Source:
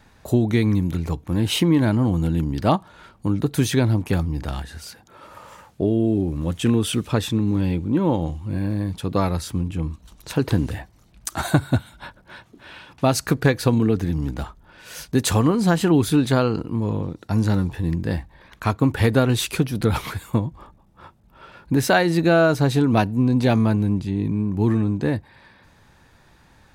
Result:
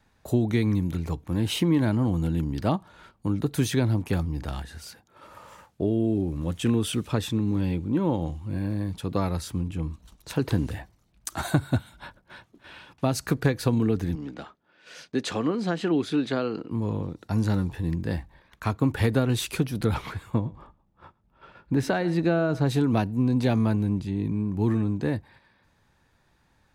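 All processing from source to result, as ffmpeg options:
ffmpeg -i in.wav -filter_complex "[0:a]asettb=1/sr,asplit=3[link_01][link_02][link_03];[link_01]atrim=end=14.154[link_04];[link_02]atrim=start=14.15:end=16.71,asetpts=PTS-STARTPTS,afade=type=in:duration=0.004:curve=qsin,afade=type=out:start_time=2.556:duration=0.004:curve=qsin,highpass=240,lowpass=4600,equalizer=frequency=940:width=2.7:gain=-5.5[link_05];[link_03]atrim=start=16.706[link_06];[link_04][link_05]acrossfade=duration=0.004:curve1=hsin:curve2=qsin[link_07];[link_07][link_06]acrossfade=duration=0.004:curve1=qsin:curve2=hsin,asettb=1/sr,asplit=3[link_08][link_09][link_10];[link_08]atrim=end=19.944[link_11];[link_09]atrim=start=19.94:end=22.67,asetpts=PTS-STARTPTS,afade=type=in:duration=0.004:curve=qsin,afade=type=out:start_time=2.726:duration=0.004:curve=qsin,aemphasis=mode=reproduction:type=50kf,aecho=1:1:112:0.1,atrim=end_sample=120393[link_12];[link_10]atrim=start=22.666[link_13];[link_11][link_12]acrossfade=duration=0.004:curve1=hsin:curve2=qsin[link_14];[link_14][link_13]acrossfade=duration=0.004:curve1=qsin:curve2=hsin,agate=range=-7dB:threshold=-46dB:ratio=16:detection=peak,acrossover=split=400[link_15][link_16];[link_16]acompressor=threshold=-22dB:ratio=3[link_17];[link_15][link_17]amix=inputs=2:normalize=0,volume=-4.5dB" out.wav

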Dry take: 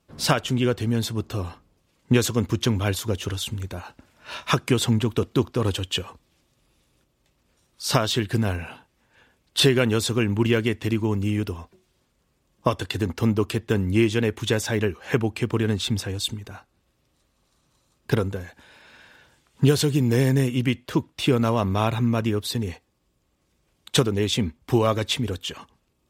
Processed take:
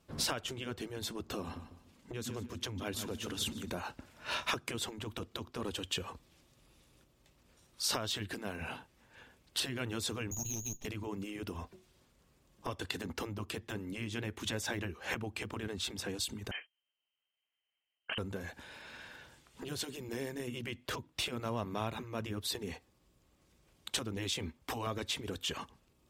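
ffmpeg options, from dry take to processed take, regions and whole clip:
ffmpeg -i in.wav -filter_complex "[0:a]asettb=1/sr,asplit=3[link_01][link_02][link_03];[link_01]atrim=end=1.414[link_04];[link_02]atrim=start=1.41:end=3.7,asetpts=PTS-STARTPTS,afade=type=in:duration=0.004:curve=qsin,afade=type=out:start_time=2.286:duration=0.004:curve=qsin,equalizer=frequency=230:width_type=o:width=0.42:gain=10.5,aecho=1:1:149|298|447:0.158|0.0491|0.0152,atrim=end_sample=100989[link_05];[link_03]atrim=start=3.696[link_06];[link_04][link_05]acrossfade=duration=0.004:curve1=hsin:curve2=qsin[link_07];[link_07][link_06]acrossfade=duration=0.004:curve1=qsin:curve2=hsin,asettb=1/sr,asplit=3[link_08][link_09][link_10];[link_08]atrim=end=10.314[link_11];[link_09]atrim=start=10.31:end=10.85,asetpts=PTS-STARTPTS,afade=type=in:duration=0.004:curve=qsin,afade=type=out:start_time=0.536:duration=0.004:curve=qsin,asuperstop=centerf=1900:order=20:qfactor=1.2,lowpass=frequency=3000:width_type=q:width=0.5098,lowpass=frequency=3000:width_type=q:width=0.6013,lowpass=frequency=3000:width_type=q:width=0.9,lowpass=frequency=3000:width_type=q:width=2.563,afreqshift=-3500,aeval=exprs='abs(val(0))':channel_layout=same[link_12];[link_10]atrim=start=10.846[link_13];[link_11][link_12]acrossfade=duration=0.004:curve1=hsin:curve2=qsin[link_14];[link_14][link_13]acrossfade=duration=0.004:curve1=qsin:curve2=hsin,asettb=1/sr,asplit=3[link_15][link_16][link_17];[link_15]atrim=end=16.514[link_18];[link_16]atrim=start=16.51:end=18.18,asetpts=PTS-STARTPTS,afade=type=in:duration=0.004:curve=qsin,afade=type=out:start_time=1.666:duration=0.004:curve=qsin,agate=range=-21dB:threshold=-60dB:ratio=16:release=100:detection=peak,lowpass=frequency=2700:width_type=q:width=0.5098,lowpass=frequency=2700:width_type=q:width=0.6013,lowpass=frequency=2700:width_type=q:width=0.9,lowpass=frequency=2700:width_type=q:width=2.563,afreqshift=-3200[link_19];[link_17]atrim=start=18.176[link_20];[link_18][link_19]acrossfade=duration=0.004:curve1=hsin:curve2=qsin[link_21];[link_21][link_20]acrossfade=duration=0.004:curve1=qsin:curve2=hsin,asettb=1/sr,asplit=3[link_22][link_23][link_24];[link_22]atrim=end=24.174[link_25];[link_23]atrim=start=24.17:end=24.87,asetpts=PTS-STARTPTS,afade=type=in:duration=0.004:curve=qsin,afade=type=out:start_time=0.696:duration=0.004:curve=qsin,lowshelf=frequency=180:gain=-7.5,bandreject=frequency=210:width=5.1[link_26];[link_24]atrim=start=24.866[link_27];[link_25][link_26]acrossfade=duration=0.004:curve1=hsin:curve2=qsin[link_28];[link_28][link_27]acrossfade=duration=0.004:curve1=qsin:curve2=hsin,acompressor=threshold=-30dB:ratio=12,afftfilt=real='re*lt(hypot(re,im),0.126)':imag='im*lt(hypot(re,im),0.126)':win_size=1024:overlap=0.75" out.wav

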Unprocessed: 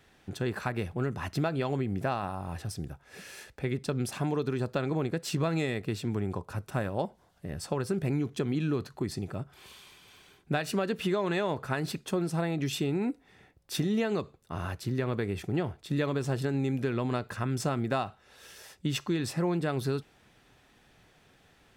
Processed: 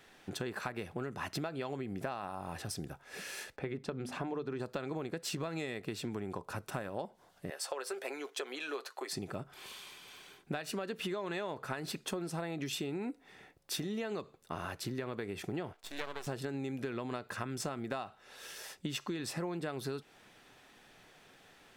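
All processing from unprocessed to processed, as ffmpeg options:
ffmpeg -i in.wav -filter_complex "[0:a]asettb=1/sr,asplit=3[link_01][link_02][link_03];[link_01]atrim=end=3.564[link_04];[link_02]atrim=start=3.56:end=4.6,asetpts=PTS-STARTPTS,afade=type=in:duration=0.004:curve=qsin,afade=type=out:start_time=1.036:duration=0.004:curve=qsin,lowpass=frequency=1900:poles=1,bandreject=frequency=50:width_type=h:width=6,bandreject=frequency=100:width_type=h:width=6,bandreject=frequency=150:width_type=h:width=6,bandreject=frequency=200:width_type=h:width=6,bandreject=frequency=250:width_type=h:width=6[link_05];[link_03]atrim=start=4.596[link_06];[link_04][link_05]acrossfade=duration=0.004:curve1=hsin:curve2=qsin[link_07];[link_07][link_06]acrossfade=duration=0.004:curve1=qsin:curve2=hsin,asettb=1/sr,asplit=3[link_08][link_09][link_10];[link_08]atrim=end=7.504[link_11];[link_09]atrim=start=7.5:end=9.13,asetpts=PTS-STARTPTS,afade=type=in:duration=0.004:curve=qsin,afade=type=out:start_time=1.626:duration=0.004:curve=qsin,highpass=frequency=480:width=0.5412,highpass=frequency=480:width=1.3066,aecho=1:1:7.5:0.39,atrim=end_sample=71883[link_12];[link_10]atrim=start=9.126[link_13];[link_11][link_12]acrossfade=duration=0.004:curve1=hsin:curve2=qsin[link_14];[link_14][link_13]acrossfade=duration=0.004:curve1=qsin:curve2=hsin,asettb=1/sr,asplit=3[link_15][link_16][link_17];[link_15]atrim=end=15.734[link_18];[link_16]atrim=start=15.73:end=16.27,asetpts=PTS-STARTPTS,afade=type=in:duration=0.004:curve=qsin,afade=type=out:start_time=0.536:duration=0.004:curve=qsin,highpass=490,aeval=exprs='max(val(0),0)':channel_layout=same[link_19];[link_17]atrim=start=16.266[link_20];[link_18][link_19]acrossfade=duration=0.004:curve1=hsin:curve2=qsin[link_21];[link_21][link_20]acrossfade=duration=0.004:curve1=qsin:curve2=hsin,equalizer=frequency=61:width_type=o:width=2.7:gain=-13,acompressor=threshold=-38dB:ratio=6,volume=3dB" out.wav

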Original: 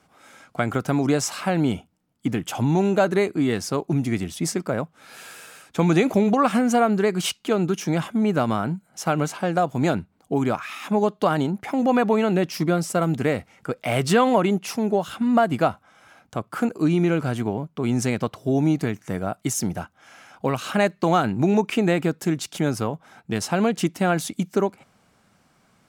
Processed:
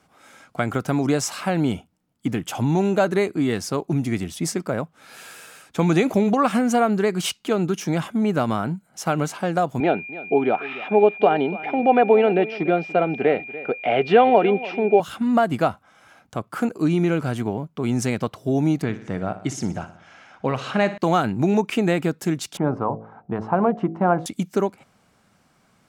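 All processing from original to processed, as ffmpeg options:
ffmpeg -i in.wav -filter_complex "[0:a]asettb=1/sr,asplit=3[link_01][link_02][link_03];[link_01]atrim=end=9.804[link_04];[link_02]atrim=start=9.8:end=15,asetpts=PTS-STARTPTS,afade=type=in:duration=0.004:curve=qsin,afade=type=out:start_time=5.196:duration=0.004:curve=qsin,aeval=exprs='val(0)+0.0224*sin(2*PI*2400*n/s)':channel_layout=same,highpass=230,equalizer=frequency=420:width_type=q:width=4:gain=8,equalizer=frequency=750:width_type=q:width=4:gain=9,equalizer=frequency=1100:width_type=q:width=4:gain=-8,equalizer=frequency=3000:width_type=q:width=4:gain=3,lowpass=frequency=3200:width=0.5412,lowpass=frequency=3200:width=1.3066,aecho=1:1:289:0.141,atrim=end_sample=229320[link_05];[link_03]atrim=start=14.996[link_06];[link_04][link_05]acrossfade=duration=0.004:curve1=hsin:curve2=qsin[link_07];[link_07][link_06]acrossfade=duration=0.004:curve1=qsin:curve2=hsin,asettb=1/sr,asplit=3[link_08][link_09][link_10];[link_08]atrim=end=18.824[link_11];[link_09]atrim=start=18.82:end=20.98,asetpts=PTS-STARTPTS,afade=type=in:duration=0.004:curve=qsin,afade=type=out:start_time=2.156:duration=0.004:curve=qsin,lowpass=4800,aecho=1:1:60|120|180|240|300|360:0.211|0.118|0.0663|0.0371|0.0208|0.0116,atrim=end_sample=95256[link_12];[link_10]atrim=start=20.976[link_13];[link_11][link_12]acrossfade=duration=0.004:curve1=hsin:curve2=qsin[link_14];[link_14][link_13]acrossfade=duration=0.004:curve1=qsin:curve2=hsin,asettb=1/sr,asplit=3[link_15][link_16][link_17];[link_15]atrim=end=22.574[link_18];[link_16]atrim=start=22.57:end=24.26,asetpts=PTS-STARTPTS,afade=type=in:duration=0.004:curve=qsin,afade=type=out:start_time=1.686:duration=0.004:curve=qsin,lowpass=frequency=1000:width_type=q:width=2.4,bandreject=frequency=54.95:width_type=h:width=4,bandreject=frequency=109.9:width_type=h:width=4,bandreject=frequency=164.85:width_type=h:width=4,bandreject=frequency=219.8:width_type=h:width=4,bandreject=frequency=274.75:width_type=h:width=4,bandreject=frequency=329.7:width_type=h:width=4,bandreject=frequency=384.65:width_type=h:width=4,bandreject=frequency=439.6:width_type=h:width=4,bandreject=frequency=494.55:width_type=h:width=4,bandreject=frequency=549.5:width_type=h:width=4,bandreject=frequency=604.45:width_type=h:width=4,bandreject=frequency=659.4:width_type=h:width=4,bandreject=frequency=714.35:width_type=h:width=4,bandreject=frequency=769.3:width_type=h:width=4[link_19];[link_17]atrim=start=24.256[link_20];[link_18][link_19]acrossfade=duration=0.004:curve1=hsin:curve2=qsin[link_21];[link_21][link_20]acrossfade=duration=0.004:curve1=qsin:curve2=hsin" out.wav

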